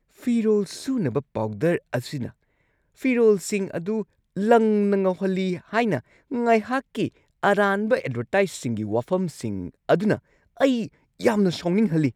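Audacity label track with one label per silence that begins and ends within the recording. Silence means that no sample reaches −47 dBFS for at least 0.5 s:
2.310000	2.980000	silence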